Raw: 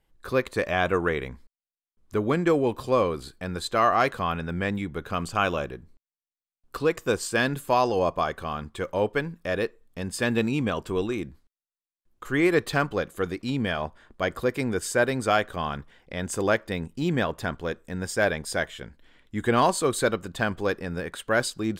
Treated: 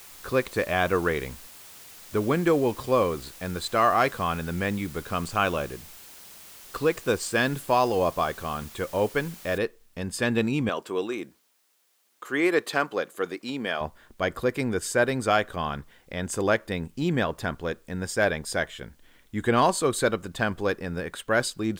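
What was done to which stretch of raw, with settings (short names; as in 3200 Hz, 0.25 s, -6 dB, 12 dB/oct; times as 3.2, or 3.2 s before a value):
9.58 noise floor step -47 dB -68 dB
10.69–13.81 HPF 300 Hz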